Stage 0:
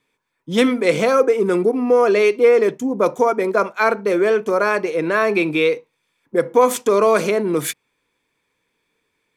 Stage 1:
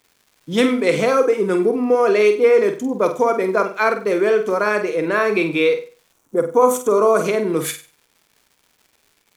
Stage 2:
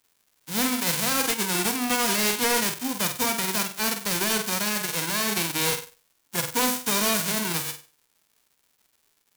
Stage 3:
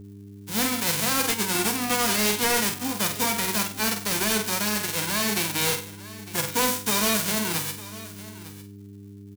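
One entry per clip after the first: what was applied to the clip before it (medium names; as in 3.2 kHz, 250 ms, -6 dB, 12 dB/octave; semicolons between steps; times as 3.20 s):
crackle 280 per s -42 dBFS; time-frequency box 6.12–7.25 s, 1.5–5.5 kHz -10 dB; flutter echo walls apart 8.2 m, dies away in 0.35 s; trim -1 dB
formants flattened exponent 0.1; overload inside the chain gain 12.5 dB; trim -6.5 dB
delay 904 ms -17 dB; mains buzz 100 Hz, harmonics 4, -42 dBFS -5 dB/octave; doubling 14 ms -10.5 dB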